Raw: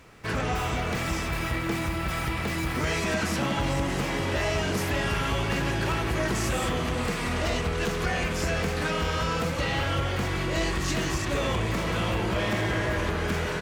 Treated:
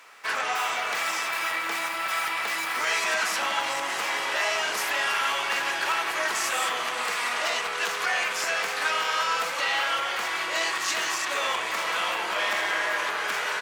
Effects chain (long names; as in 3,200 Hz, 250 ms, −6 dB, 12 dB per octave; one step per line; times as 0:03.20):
Chebyshev high-pass filter 1,000 Hz, order 2
level +5.5 dB